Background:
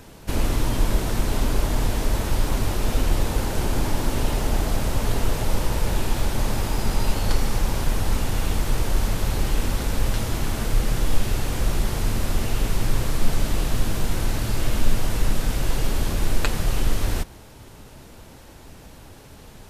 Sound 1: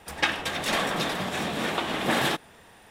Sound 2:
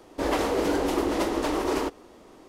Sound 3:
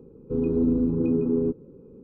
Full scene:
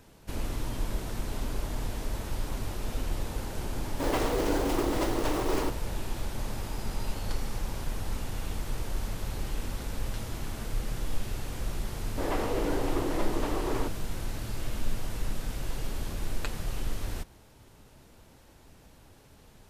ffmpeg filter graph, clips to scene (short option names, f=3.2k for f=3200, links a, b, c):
-filter_complex "[2:a]asplit=2[a][b];[0:a]volume=-11dB[c];[a]acrusher=bits=4:mode=log:mix=0:aa=0.000001[d];[b]acrossover=split=3000[e][f];[f]acompressor=threshold=-45dB:ratio=4:attack=1:release=60[g];[e][g]amix=inputs=2:normalize=0[h];[d]atrim=end=2.48,asetpts=PTS-STARTPTS,volume=-4dB,afade=t=in:d=0.004:c=hsin,afade=t=out:st=2.476:d=0.004:c=hsin,adelay=168021S[i];[h]atrim=end=2.48,asetpts=PTS-STARTPTS,volume=-6dB,afade=t=in:d=0.004:c=hsin,afade=t=out:st=2.476:d=0.004:c=hsin,adelay=11990[j];[c][i][j]amix=inputs=3:normalize=0"